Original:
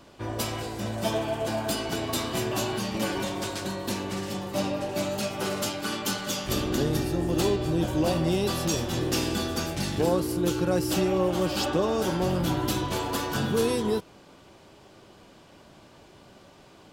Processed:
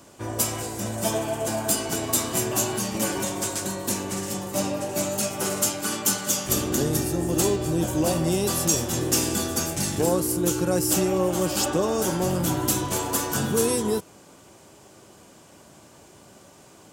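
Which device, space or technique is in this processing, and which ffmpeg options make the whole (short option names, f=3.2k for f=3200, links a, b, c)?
budget condenser microphone: -af "highpass=64,highshelf=f=5.5k:t=q:w=1.5:g=9,volume=1.5dB"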